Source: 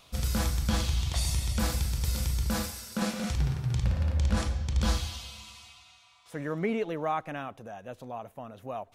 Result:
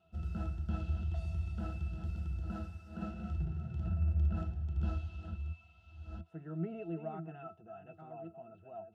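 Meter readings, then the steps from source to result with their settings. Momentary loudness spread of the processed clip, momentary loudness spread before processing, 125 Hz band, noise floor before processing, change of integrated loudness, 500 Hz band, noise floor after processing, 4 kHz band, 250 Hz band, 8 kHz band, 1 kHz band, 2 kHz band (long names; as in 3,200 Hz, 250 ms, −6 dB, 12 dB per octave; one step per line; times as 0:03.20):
15 LU, 14 LU, −6.0 dB, −59 dBFS, −8.0 dB, −11.5 dB, −63 dBFS, −27.5 dB, −8.5 dB, below −35 dB, −13.5 dB, −16.5 dB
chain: delay that plays each chunk backwards 690 ms, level −8.5 dB
high-pass filter 69 Hz
resonances in every octave E, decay 0.11 s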